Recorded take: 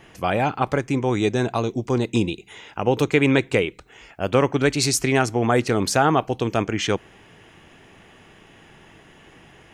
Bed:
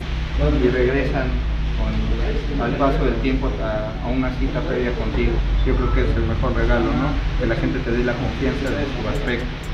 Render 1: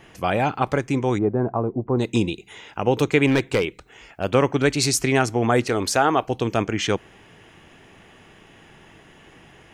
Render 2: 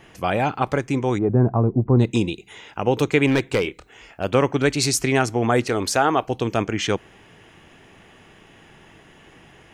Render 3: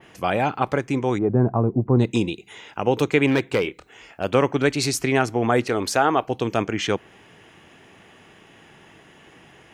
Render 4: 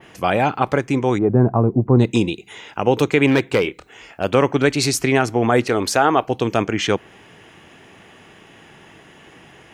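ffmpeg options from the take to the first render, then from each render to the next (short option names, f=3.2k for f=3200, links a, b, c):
-filter_complex "[0:a]asplit=3[a][b][c];[a]afade=t=out:st=1.17:d=0.02[d];[b]lowpass=f=1.2k:w=0.5412,lowpass=f=1.2k:w=1.3066,afade=t=in:st=1.17:d=0.02,afade=t=out:st=1.98:d=0.02[e];[c]afade=t=in:st=1.98:d=0.02[f];[d][e][f]amix=inputs=3:normalize=0,asettb=1/sr,asplit=3[g][h][i];[g]atrim=end=3.274[j];[h]atrim=start=3.27:end=4.24,asetpts=PTS-STARTPTS,afade=t=in:d=0.004:c=qsin,afade=t=out:st=0.966:d=0.004:c=qsin,asoftclip=type=hard:threshold=-13.5dB[k];[i]atrim=start=4.236[l];[j][k]acrossfade=d=0.004:c1=hsin:c2=qsin[m];[m][l]acrossfade=d=0.004:c1=qsin:c2=hsin,asettb=1/sr,asplit=3[n][o][p];[n]atrim=end=5.674[q];[o]atrim=start=5.67:end=6.28,asetpts=PTS-STARTPTS,afade=t=in:d=0.004:c=qsin,afade=t=out:st=0.606:d=0.004:c=qsin,equalizer=f=160:w=1.5:g=-9.5[r];[p]atrim=start=6.276[s];[q][r]acrossfade=d=0.004:c1=hsin:c2=qsin[t];[t][s]acrossfade=d=0.004:c1=qsin:c2=hsin"
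-filter_complex "[0:a]asettb=1/sr,asplit=3[a][b][c];[a]atrim=end=1.294[d];[b]atrim=start=1.29:end=2.11,asetpts=PTS-STARTPTS,afade=t=in:d=0.004:c=qsin,afade=t=out:st=0.816:d=0.004:c=qsin,bass=f=250:g=10,treble=f=4k:g=-6[e];[c]atrim=start=2.106[f];[d][e]acrossfade=d=0.004:c1=hsin:c2=qsin[g];[g][f]acrossfade=d=0.004:c1=qsin:c2=hsin,asettb=1/sr,asplit=3[h][i][j];[h]atrim=end=3.624[k];[i]atrim=start=3.62:end=4.25,asetpts=PTS-STARTPTS,afade=t=in:d=0.004:c=qsin,afade=t=out:st=0.626:d=0.004:c=qsin,asplit=2[l][m];[m]adelay=28,volume=-9.5dB[n];[l][n]amix=inputs=2:normalize=0,atrim=end_sample=27783[o];[j]atrim=start=4.246[p];[k][o]acrossfade=d=0.004:c1=hsin:c2=qsin[q];[q][p]acrossfade=d=0.004:c1=qsin:c2=hsin"
-af "highpass=f=110:p=1,adynamicequalizer=threshold=0.00708:dfrequency=7500:dqfactor=0.7:tfrequency=7500:tqfactor=0.7:attack=5:release=100:ratio=0.375:range=3.5:mode=cutabove:tftype=bell"
-af "volume=4dB,alimiter=limit=-3dB:level=0:latency=1"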